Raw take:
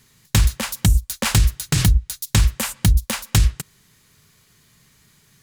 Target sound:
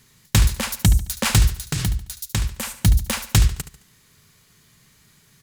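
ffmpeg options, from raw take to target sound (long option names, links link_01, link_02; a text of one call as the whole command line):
ffmpeg -i in.wav -filter_complex "[0:a]asplit=3[link_01][link_02][link_03];[link_01]afade=type=out:start_time=1.55:duration=0.02[link_04];[link_02]acompressor=threshold=-32dB:ratio=1.5,afade=type=in:start_time=1.55:duration=0.02,afade=type=out:start_time=2.84:duration=0.02[link_05];[link_03]afade=type=in:start_time=2.84:duration=0.02[link_06];[link_04][link_05][link_06]amix=inputs=3:normalize=0,aecho=1:1:72|144|216|288:0.237|0.0925|0.0361|0.0141" out.wav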